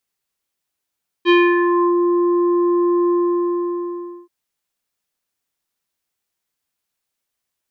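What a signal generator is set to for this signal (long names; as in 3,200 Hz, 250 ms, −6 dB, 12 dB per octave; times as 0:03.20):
subtractive voice square F4 24 dB per octave, low-pass 870 Hz, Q 2, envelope 2 octaves, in 0.69 s, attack 45 ms, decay 0.26 s, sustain −5.5 dB, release 1.18 s, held 1.85 s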